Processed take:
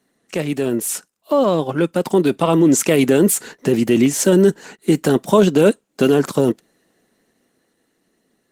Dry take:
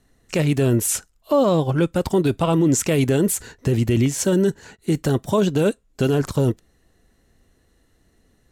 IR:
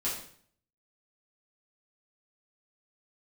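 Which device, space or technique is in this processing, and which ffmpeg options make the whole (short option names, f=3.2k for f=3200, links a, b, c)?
video call: -filter_complex "[0:a]asettb=1/sr,asplit=3[a][b][c];[a]atrim=end=1.324[d];[b]atrim=start=1.32:end=1.77,asetpts=PTS-STARTPTS,afade=t=in:d=0.004:c=qsin,afade=t=out:st=0.446:d=0.004:c=qsin,equalizer=f=1.9k:t=o:w=1.1:g=3[e];[c]atrim=start=1.766[f];[d][e]acrossfade=d=0.004:c1=hsin:c2=qsin[g];[g][f]acrossfade=d=0.004:c1=qsin:c2=hsin,highpass=f=180:w=0.5412,highpass=f=180:w=1.3066,dynaudnorm=f=320:g=13:m=11.5dB" -ar 48000 -c:a libopus -b:a 20k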